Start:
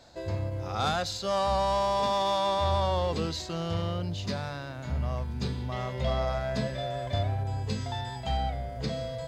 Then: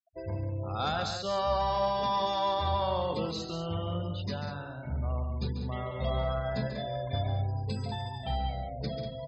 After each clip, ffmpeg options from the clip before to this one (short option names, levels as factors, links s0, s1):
-af "afftfilt=real='re*gte(hypot(re,im),0.0141)':imag='im*gte(hypot(re,im),0.0141)':win_size=1024:overlap=0.75,aecho=1:1:139.9|192.4:0.398|0.355,volume=0.708"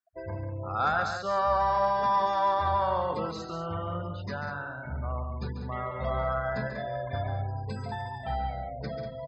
-af "firequalizer=gain_entry='entry(250,0);entry(1500,12);entry(3000,-7);entry(5300,-2)':delay=0.05:min_phase=1,volume=0.794"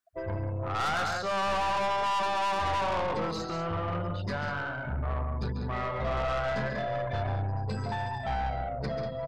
-af "aeval=exprs='(tanh(39.8*val(0)+0.3)-tanh(0.3))/39.8':c=same,volume=1.88"